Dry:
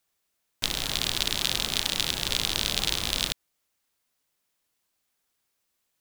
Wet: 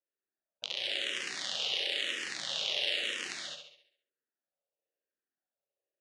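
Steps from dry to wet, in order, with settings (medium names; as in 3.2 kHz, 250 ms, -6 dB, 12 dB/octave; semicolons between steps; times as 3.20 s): local Wiener filter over 41 samples; spectral gate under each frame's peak -30 dB strong; treble shelf 3.7 kHz -10.5 dB; peak limiter -14 dBFS, peak gain reduction 4 dB; cabinet simulation 450–9500 Hz, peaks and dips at 560 Hz +7 dB, 1.9 kHz +8 dB, 2.9 kHz +7 dB, 6.5 kHz +3 dB; on a send: flutter echo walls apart 11.7 m, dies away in 0.61 s; on the sum: gated-style reverb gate 240 ms rising, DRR -1.5 dB; barber-pole phaser -1 Hz; trim -4 dB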